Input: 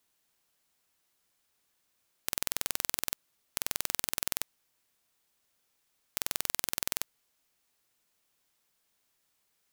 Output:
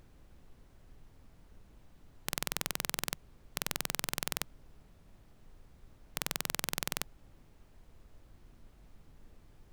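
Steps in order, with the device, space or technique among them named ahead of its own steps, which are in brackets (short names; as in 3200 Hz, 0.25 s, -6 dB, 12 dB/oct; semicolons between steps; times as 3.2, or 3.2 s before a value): car interior (bell 150 Hz +7 dB; high shelf 4900 Hz -8 dB; brown noise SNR 12 dB); gain +2.5 dB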